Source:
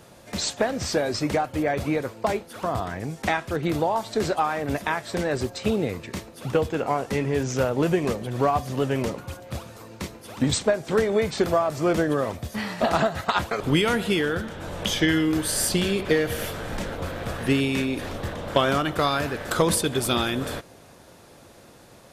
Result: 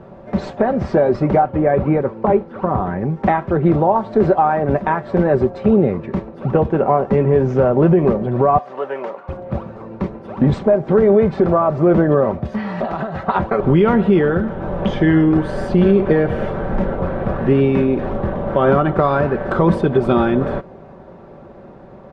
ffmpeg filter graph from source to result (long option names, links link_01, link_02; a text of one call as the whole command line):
ffmpeg -i in.wav -filter_complex "[0:a]asettb=1/sr,asplit=3[link_01][link_02][link_03];[link_01]atrim=end=1.424[link_04];[link_02]atrim=start=1.42:end=3.22,asetpts=PTS-STARTPTS,afade=type=in:duration=0.004:curve=qsin,afade=type=out:start_time=1.796:duration=0.004:curve=qsin,acrossover=split=3200[link_05][link_06];[link_06]acompressor=threshold=-50dB:ratio=4:attack=1:release=60[link_07];[link_05][link_07]amix=inputs=2:normalize=0,lowpass=8800,bandreject=frequency=660:width=8.2[link_08];[link_03]atrim=start=3.216[link_09];[link_04][link_08]acrossfade=duration=0.004:curve1=hsin:curve2=qsin[link_10];[link_10][link_09]acrossfade=duration=0.004:curve1=qsin:curve2=hsin,asettb=1/sr,asplit=3[link_11][link_12][link_13];[link_11]atrim=end=8.584[link_14];[link_12]atrim=start=8.58:end=9.29,asetpts=PTS-STARTPTS,afade=type=in:duration=0.004:curve=qsin,afade=type=out:start_time=0.706:duration=0.004:curve=qsin,highpass=800,highshelf=frequency=5300:gain=-4[link_15];[link_13]atrim=start=9.286[link_16];[link_14][link_15]acrossfade=duration=0.004:curve1=hsin:curve2=qsin[link_17];[link_17][link_16]acrossfade=duration=0.004:curve1=qsin:curve2=hsin,asettb=1/sr,asplit=3[link_18][link_19][link_20];[link_18]atrim=end=12.454[link_21];[link_19]atrim=start=12.45:end=13.23,asetpts=PTS-STARTPTS,afade=type=in:duration=0.004:curve=qsin,afade=type=out:start_time=0.776:duration=0.004:curve=qsin,equalizer=frequency=5200:width=0.34:gain=9.5,acompressor=threshold=-28dB:ratio=6:attack=3.2:release=140:knee=1:detection=peak[link_22];[link_20]atrim=start=13.226[link_23];[link_21][link_22]acrossfade=duration=0.004:curve1=hsin:curve2=qsin[link_24];[link_24][link_23]acrossfade=duration=0.004:curve1=qsin:curve2=hsin,lowpass=1000,aecho=1:1:5.2:0.45,alimiter=level_in=14.5dB:limit=-1dB:release=50:level=0:latency=1,volume=-3.5dB" out.wav